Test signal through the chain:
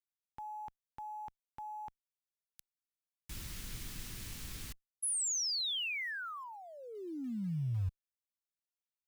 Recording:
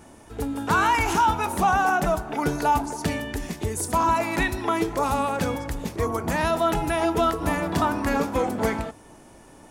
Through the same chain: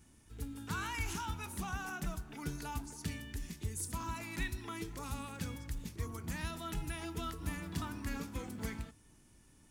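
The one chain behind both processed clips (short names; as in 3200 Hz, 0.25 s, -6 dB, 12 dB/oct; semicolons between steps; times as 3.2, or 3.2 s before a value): passive tone stack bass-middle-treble 6-0-2; in parallel at -9 dB: short-mantissa float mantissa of 2-bit; on the sum: gain +1 dB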